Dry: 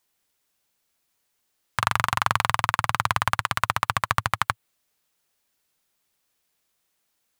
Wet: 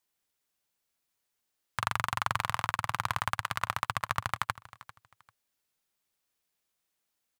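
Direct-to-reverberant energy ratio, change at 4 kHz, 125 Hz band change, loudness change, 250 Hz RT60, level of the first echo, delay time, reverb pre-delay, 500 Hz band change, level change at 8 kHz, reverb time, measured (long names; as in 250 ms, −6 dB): no reverb audible, −8.0 dB, −8.0 dB, −8.0 dB, no reverb audible, −18.5 dB, 395 ms, no reverb audible, −8.0 dB, −8.0 dB, no reverb audible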